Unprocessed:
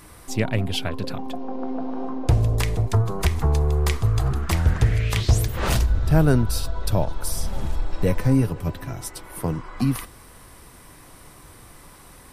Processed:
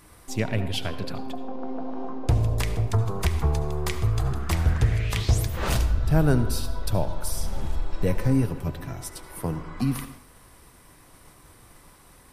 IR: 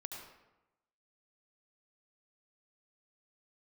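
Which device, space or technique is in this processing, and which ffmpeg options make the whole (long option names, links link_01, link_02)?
keyed gated reverb: -filter_complex "[0:a]asplit=3[link_01][link_02][link_03];[1:a]atrim=start_sample=2205[link_04];[link_02][link_04]afir=irnorm=-1:irlink=0[link_05];[link_03]apad=whole_len=543715[link_06];[link_05][link_06]sidechaingate=range=-33dB:threshold=-43dB:ratio=16:detection=peak,volume=-2dB[link_07];[link_01][link_07]amix=inputs=2:normalize=0,volume=-6.5dB"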